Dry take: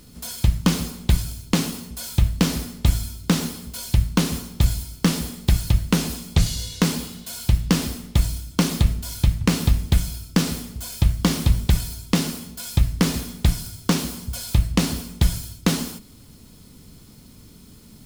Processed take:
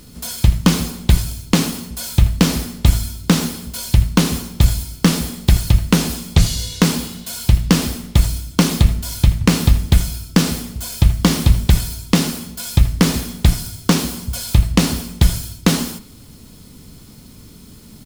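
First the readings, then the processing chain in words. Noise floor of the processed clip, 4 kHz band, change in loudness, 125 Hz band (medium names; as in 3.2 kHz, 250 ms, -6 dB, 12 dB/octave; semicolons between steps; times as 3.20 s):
-42 dBFS, +5.5 dB, +5.5 dB, +5.5 dB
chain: speakerphone echo 80 ms, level -14 dB; trim +5.5 dB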